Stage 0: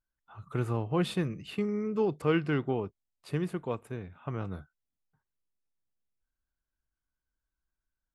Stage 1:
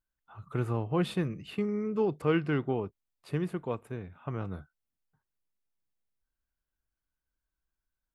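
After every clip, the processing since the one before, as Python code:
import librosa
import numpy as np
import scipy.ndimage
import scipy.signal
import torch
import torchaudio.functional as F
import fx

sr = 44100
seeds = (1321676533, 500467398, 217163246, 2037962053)

y = fx.peak_eq(x, sr, hz=6700.0, db=-4.0, octaves=1.9)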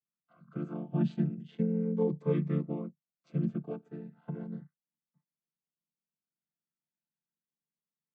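y = fx.chord_vocoder(x, sr, chord='minor triad', root=50)
y = fx.notch_cascade(y, sr, direction='rising', hz=0.36)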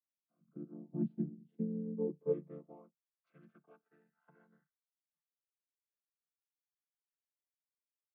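y = fx.filter_sweep_bandpass(x, sr, from_hz=280.0, to_hz=1500.0, start_s=1.94, end_s=3.27, q=1.8)
y = fx.upward_expand(y, sr, threshold_db=-43.0, expansion=1.5)
y = y * librosa.db_to_amplitude(-1.0)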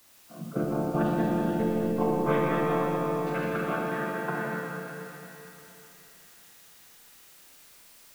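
y = fx.echo_wet_highpass(x, sr, ms=120, feedback_pct=82, hz=1400.0, wet_db=-10)
y = fx.rev_schroeder(y, sr, rt60_s=3.0, comb_ms=26, drr_db=-2.5)
y = fx.spectral_comp(y, sr, ratio=4.0)
y = y * librosa.db_to_amplitude(9.0)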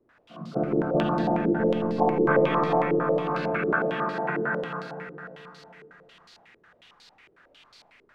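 y = fx.filter_held_lowpass(x, sr, hz=11.0, low_hz=400.0, high_hz=4400.0)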